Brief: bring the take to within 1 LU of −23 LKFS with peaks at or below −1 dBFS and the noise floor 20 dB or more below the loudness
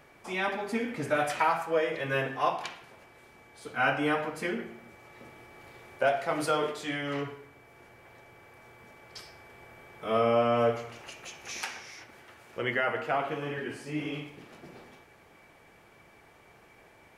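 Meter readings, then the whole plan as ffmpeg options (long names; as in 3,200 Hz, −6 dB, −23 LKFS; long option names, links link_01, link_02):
integrated loudness −30.0 LKFS; sample peak −14.0 dBFS; target loudness −23.0 LKFS
→ -af "volume=7dB"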